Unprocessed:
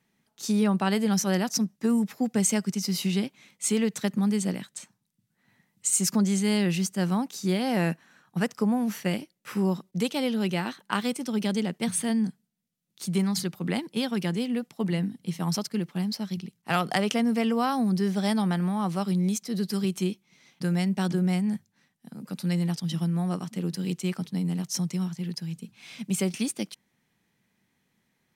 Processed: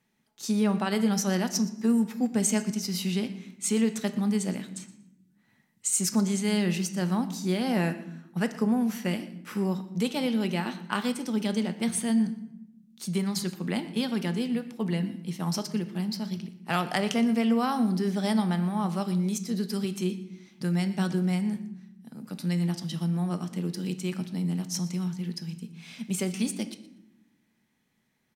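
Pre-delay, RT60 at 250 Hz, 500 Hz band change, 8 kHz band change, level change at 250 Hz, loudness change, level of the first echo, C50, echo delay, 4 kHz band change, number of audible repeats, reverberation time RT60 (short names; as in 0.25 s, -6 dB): 3 ms, 1.5 s, -1.5 dB, -1.5 dB, -0.5 dB, -1.0 dB, -18.5 dB, 12.5 dB, 0.119 s, -1.5 dB, 1, 0.85 s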